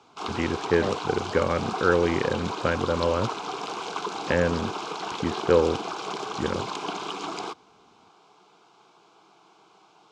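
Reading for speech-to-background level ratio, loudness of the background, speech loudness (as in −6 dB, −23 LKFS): 6.0 dB, −32.5 LKFS, −26.5 LKFS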